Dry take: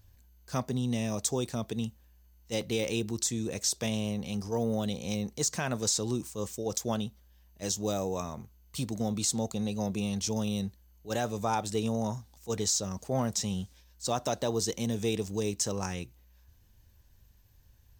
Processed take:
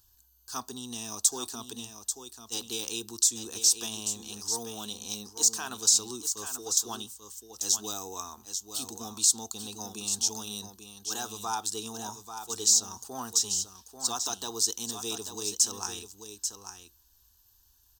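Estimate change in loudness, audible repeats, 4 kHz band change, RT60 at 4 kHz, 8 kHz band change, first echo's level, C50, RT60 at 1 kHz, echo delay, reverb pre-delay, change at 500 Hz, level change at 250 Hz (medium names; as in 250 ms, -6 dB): +3.0 dB, 1, +5.5 dB, no reverb, +8.0 dB, -8.5 dB, no reverb, no reverb, 839 ms, no reverb, -10.0 dB, -11.0 dB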